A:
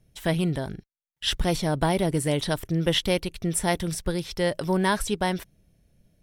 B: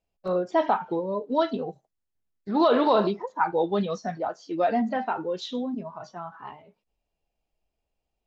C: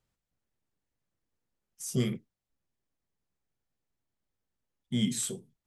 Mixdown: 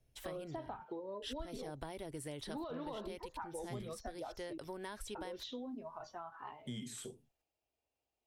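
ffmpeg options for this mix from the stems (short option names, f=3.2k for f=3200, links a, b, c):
-filter_complex "[0:a]volume=-10dB[a];[1:a]highpass=96,volume=-4.5dB,asplit=3[b][c][d];[b]atrim=end=4.58,asetpts=PTS-STARTPTS,afade=t=out:st=4.576:d=0.004:c=hsin[e];[c]atrim=start=4.58:end=5.15,asetpts=PTS-STARTPTS,volume=0[f];[d]atrim=start=5.15,asetpts=PTS-STARTPTS,afade=t=in:d=0.004:c=hsin[g];[e][f][g]concat=n=3:v=0:a=1[h];[2:a]acrossover=split=2800[i][j];[j]acompressor=threshold=-38dB:ratio=4:attack=1:release=60[k];[i][k]amix=inputs=2:normalize=0,adelay=1750,volume=-3dB[l];[a][h][l]amix=inputs=3:normalize=0,acrossover=split=260[m][n];[n]acompressor=threshold=-34dB:ratio=5[o];[m][o]amix=inputs=2:normalize=0,equalizer=f=180:t=o:w=0.4:g=-14,acompressor=threshold=-45dB:ratio=2.5"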